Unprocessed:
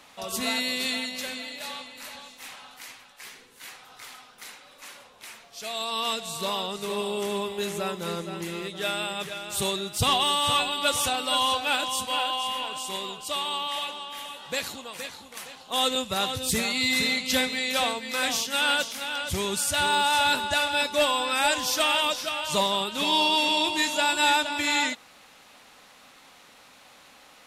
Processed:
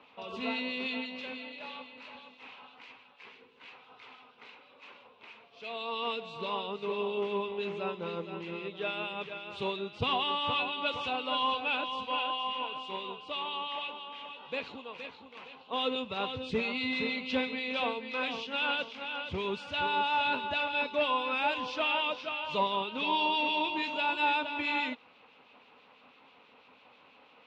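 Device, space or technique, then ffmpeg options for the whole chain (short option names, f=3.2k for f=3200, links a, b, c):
guitar amplifier with harmonic tremolo: -filter_complex "[0:a]acrossover=split=2100[a][b];[a]aeval=exprs='val(0)*(1-0.5/2+0.5/2*cos(2*PI*6.1*n/s))':c=same[c];[b]aeval=exprs='val(0)*(1-0.5/2-0.5/2*cos(2*PI*6.1*n/s))':c=same[d];[c][d]amix=inputs=2:normalize=0,asoftclip=type=tanh:threshold=-16.5dB,highpass=79,equalizer=f=250:t=q:w=4:g=5,equalizer=f=450:t=q:w=4:g=9,equalizer=f=980:t=q:w=4:g=6,equalizer=f=1.8k:t=q:w=4:g=-6,equalizer=f=2.6k:t=q:w=4:g=7,lowpass=f=3.5k:w=0.5412,lowpass=f=3.5k:w=1.3066,volume=-5.5dB"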